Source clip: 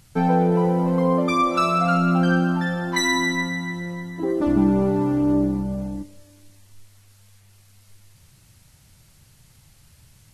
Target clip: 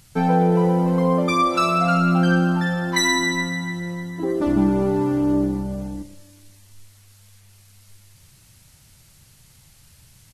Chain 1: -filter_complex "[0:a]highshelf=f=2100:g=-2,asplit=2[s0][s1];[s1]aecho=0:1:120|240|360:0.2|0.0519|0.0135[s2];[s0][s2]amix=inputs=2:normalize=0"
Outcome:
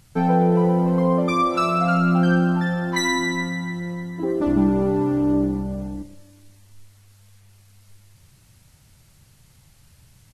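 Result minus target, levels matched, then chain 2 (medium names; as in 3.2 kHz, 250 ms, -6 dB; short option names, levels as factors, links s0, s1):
4 kHz band -4.0 dB
-filter_complex "[0:a]highshelf=f=2100:g=4,asplit=2[s0][s1];[s1]aecho=0:1:120|240|360:0.2|0.0519|0.0135[s2];[s0][s2]amix=inputs=2:normalize=0"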